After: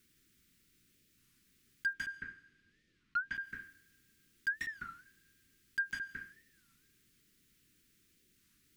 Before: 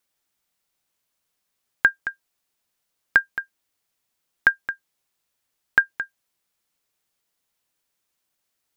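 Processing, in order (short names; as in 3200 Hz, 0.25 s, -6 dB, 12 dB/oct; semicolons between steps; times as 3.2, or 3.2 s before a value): Chebyshev band-stop 310–1800 Hz, order 2; tilt shelf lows +6.5 dB, about 830 Hz; compressor, threshold -21 dBFS, peak gain reduction 4.5 dB; overloaded stage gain 21.5 dB; 1.93–3.35 LPF 3600 Hz 12 dB/oct; reverb, pre-delay 0.149 s, DRR 18.5 dB; auto swell 0.127 s; pops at 4.48/5.91, -48 dBFS; record warp 33 1/3 rpm, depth 250 cents; gain +13 dB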